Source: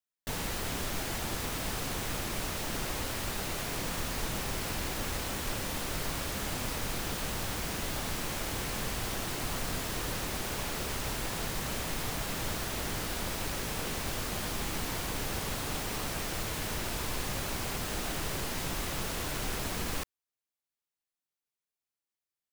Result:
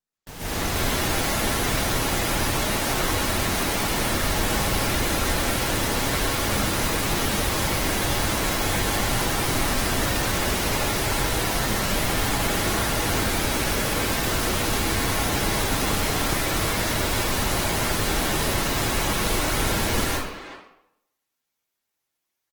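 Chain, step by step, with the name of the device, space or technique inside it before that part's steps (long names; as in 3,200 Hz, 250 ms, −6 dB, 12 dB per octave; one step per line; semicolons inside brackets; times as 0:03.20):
speakerphone in a meeting room (convolution reverb RT60 0.80 s, pre-delay 118 ms, DRR −7 dB; far-end echo of a speakerphone 370 ms, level −11 dB; automatic gain control gain up to 9 dB; level −5 dB; Opus 16 kbit/s 48,000 Hz)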